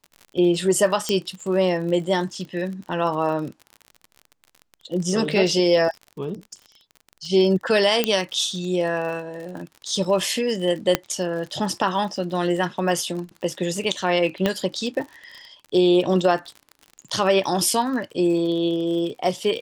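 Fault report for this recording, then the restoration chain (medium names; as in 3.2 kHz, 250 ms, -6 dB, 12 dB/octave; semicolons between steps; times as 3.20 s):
crackle 47 per s -31 dBFS
1.09 s: pop -9 dBFS
8.04 s: pop -4 dBFS
10.95 s: pop -3 dBFS
14.46 s: pop -8 dBFS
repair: de-click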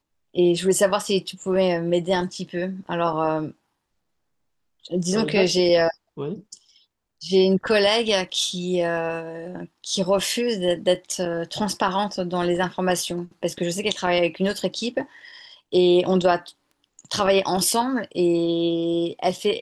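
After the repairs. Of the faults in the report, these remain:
10.95 s: pop
14.46 s: pop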